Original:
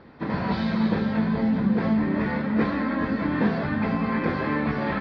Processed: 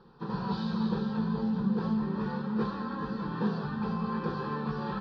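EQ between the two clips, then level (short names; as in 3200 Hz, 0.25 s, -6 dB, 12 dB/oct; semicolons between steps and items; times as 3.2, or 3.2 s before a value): low shelf 79 Hz +6.5 dB; bell 4300 Hz +4 dB 1.7 oct; fixed phaser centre 420 Hz, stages 8; -5.5 dB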